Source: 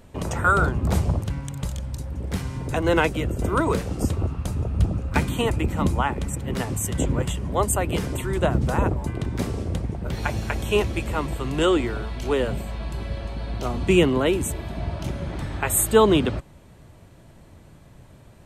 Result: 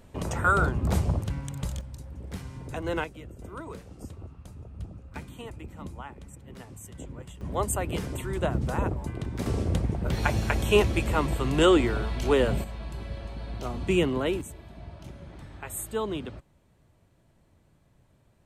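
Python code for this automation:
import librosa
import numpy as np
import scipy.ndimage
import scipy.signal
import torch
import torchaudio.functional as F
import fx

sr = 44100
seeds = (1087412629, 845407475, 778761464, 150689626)

y = fx.gain(x, sr, db=fx.steps((0.0, -3.5), (1.81, -10.0), (3.04, -18.0), (7.41, -6.0), (9.46, 0.5), (12.64, -6.5), (14.41, -14.5)))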